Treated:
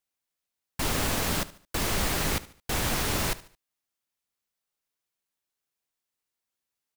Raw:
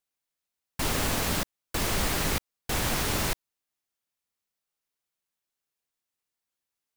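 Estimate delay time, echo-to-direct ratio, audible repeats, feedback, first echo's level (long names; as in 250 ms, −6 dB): 73 ms, −17.5 dB, 3, 39%, −18.0 dB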